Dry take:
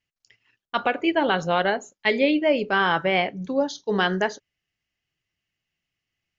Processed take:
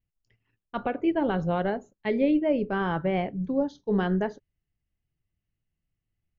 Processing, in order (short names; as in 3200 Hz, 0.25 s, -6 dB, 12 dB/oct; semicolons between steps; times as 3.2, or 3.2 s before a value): tilt -4.5 dB/oct; gain -8.5 dB